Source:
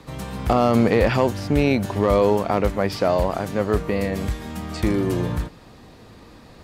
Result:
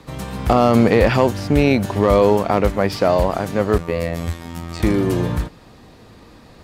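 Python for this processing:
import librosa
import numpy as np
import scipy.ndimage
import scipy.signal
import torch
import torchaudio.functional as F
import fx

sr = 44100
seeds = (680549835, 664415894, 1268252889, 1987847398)

p1 = np.sign(x) * np.maximum(np.abs(x) - 10.0 ** (-36.5 / 20.0), 0.0)
p2 = x + (p1 * 10.0 ** (-8.0 / 20.0))
p3 = fx.robotise(p2, sr, hz=84.2, at=(3.78, 4.8))
y = p3 * 10.0 ** (1.0 / 20.0)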